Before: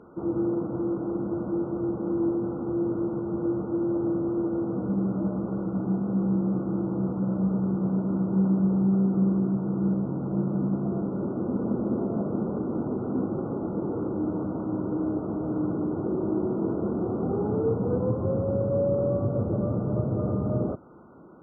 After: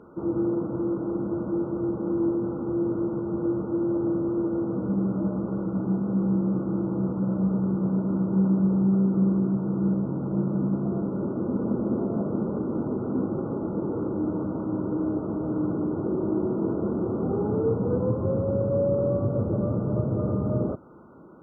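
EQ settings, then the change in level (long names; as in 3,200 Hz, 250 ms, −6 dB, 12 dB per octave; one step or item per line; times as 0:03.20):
notch filter 730 Hz, Q 12
+1.0 dB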